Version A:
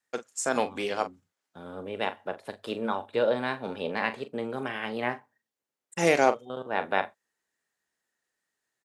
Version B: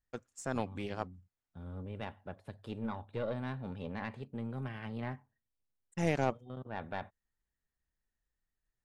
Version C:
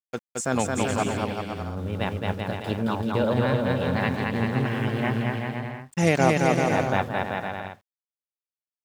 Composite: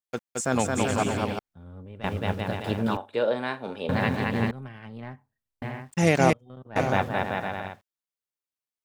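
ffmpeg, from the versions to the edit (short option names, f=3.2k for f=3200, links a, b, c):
-filter_complex "[1:a]asplit=3[a][b][c];[2:a]asplit=5[d][e][f][g][h];[d]atrim=end=1.392[i];[a]atrim=start=1.388:end=2.042[j];[e]atrim=start=2.038:end=2.972[k];[0:a]atrim=start=2.968:end=3.892[l];[f]atrim=start=3.888:end=4.512[m];[b]atrim=start=4.508:end=5.622[n];[g]atrim=start=5.618:end=6.332[o];[c]atrim=start=6.328:end=6.762[p];[h]atrim=start=6.758[q];[i][j]acrossfade=d=0.004:c1=hsin:c2=hsin[r];[r][k]acrossfade=d=0.004:c1=hsin:c2=hsin[s];[s][l]acrossfade=d=0.004:c1=hsin:c2=hsin[t];[t][m]acrossfade=d=0.004:c1=hsin:c2=hsin[u];[u][n]acrossfade=d=0.004:c1=hsin:c2=hsin[v];[v][o]acrossfade=d=0.004:c1=hsin:c2=hsin[w];[w][p]acrossfade=d=0.004:c1=hsin:c2=hsin[x];[x][q]acrossfade=d=0.004:c1=hsin:c2=hsin"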